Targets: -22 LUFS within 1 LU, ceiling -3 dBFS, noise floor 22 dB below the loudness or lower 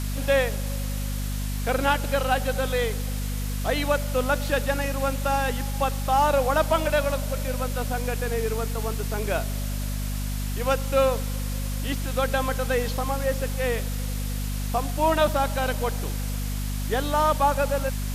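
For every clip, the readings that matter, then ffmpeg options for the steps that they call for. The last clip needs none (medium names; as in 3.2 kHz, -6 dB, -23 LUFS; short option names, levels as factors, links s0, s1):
hum 50 Hz; highest harmonic 250 Hz; hum level -26 dBFS; noise floor -28 dBFS; noise floor target -48 dBFS; loudness -26.0 LUFS; peak level -9.0 dBFS; loudness target -22.0 LUFS
-> -af "bandreject=f=50:t=h:w=4,bandreject=f=100:t=h:w=4,bandreject=f=150:t=h:w=4,bandreject=f=200:t=h:w=4,bandreject=f=250:t=h:w=4"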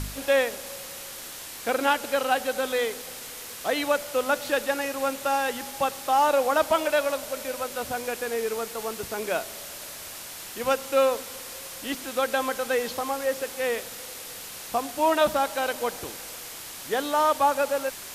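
hum not found; noise floor -40 dBFS; noise floor target -49 dBFS
-> -af "afftdn=nr=9:nf=-40"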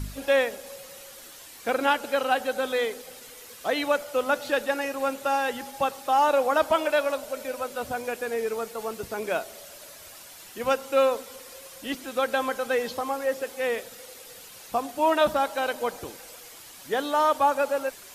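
noise floor -46 dBFS; noise floor target -49 dBFS
-> -af "afftdn=nr=6:nf=-46"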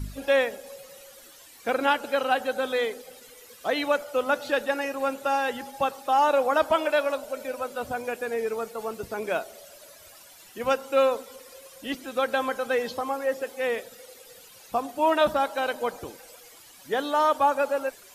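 noise floor -50 dBFS; loudness -26.5 LUFS; peak level -10.5 dBFS; loudness target -22.0 LUFS
-> -af "volume=1.68"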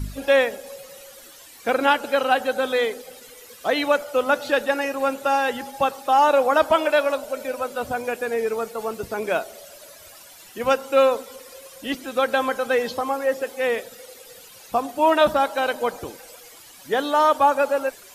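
loudness -22.0 LUFS; peak level -6.0 dBFS; noise floor -46 dBFS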